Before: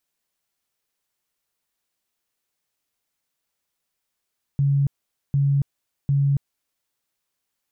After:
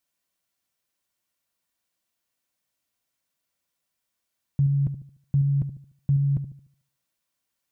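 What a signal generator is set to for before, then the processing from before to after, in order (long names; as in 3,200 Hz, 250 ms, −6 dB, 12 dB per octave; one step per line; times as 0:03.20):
tone bursts 140 Hz, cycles 39, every 0.75 s, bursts 3, −16 dBFS
notch comb filter 420 Hz
on a send: delay with a low-pass on its return 74 ms, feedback 39%, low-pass 530 Hz, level −9.5 dB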